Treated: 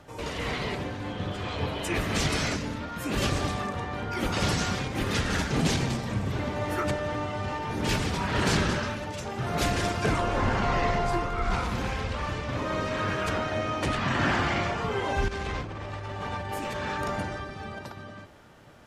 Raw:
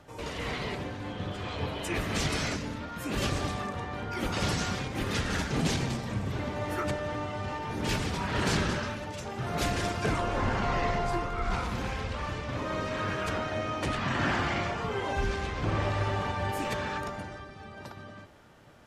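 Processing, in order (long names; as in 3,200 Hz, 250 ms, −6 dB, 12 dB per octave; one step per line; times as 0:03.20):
0:15.28–0:17.79: compressor whose output falls as the input rises −36 dBFS, ratio −1
level +3 dB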